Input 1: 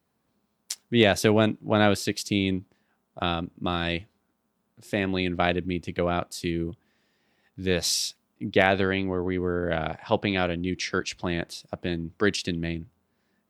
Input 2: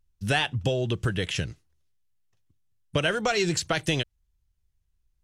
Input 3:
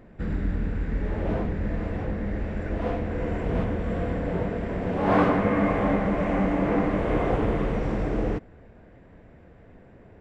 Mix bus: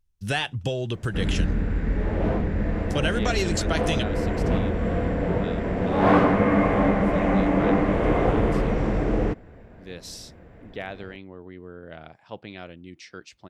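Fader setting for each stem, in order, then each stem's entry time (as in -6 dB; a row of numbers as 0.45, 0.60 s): -14.5, -1.5, +3.0 dB; 2.20, 0.00, 0.95 s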